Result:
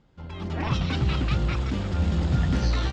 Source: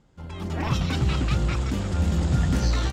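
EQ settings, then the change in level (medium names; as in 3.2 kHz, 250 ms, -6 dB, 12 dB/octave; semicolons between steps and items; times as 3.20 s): Chebyshev low-pass 4.2 kHz, order 2; 0.0 dB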